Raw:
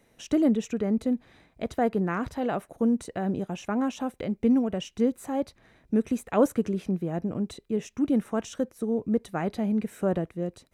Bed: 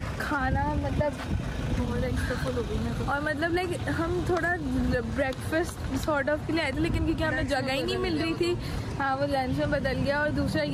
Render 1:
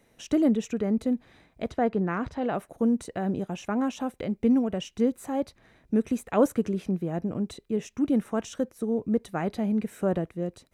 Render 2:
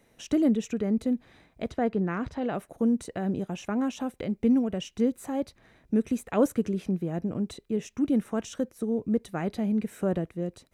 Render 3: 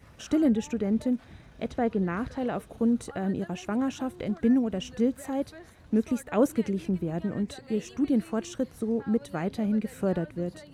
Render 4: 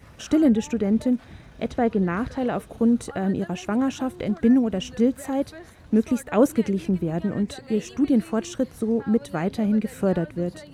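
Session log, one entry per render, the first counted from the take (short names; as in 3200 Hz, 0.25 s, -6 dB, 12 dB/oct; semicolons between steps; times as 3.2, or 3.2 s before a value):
1.71–2.55 air absorption 85 m
dynamic EQ 910 Hz, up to -4 dB, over -37 dBFS, Q 0.82
add bed -20.5 dB
gain +5 dB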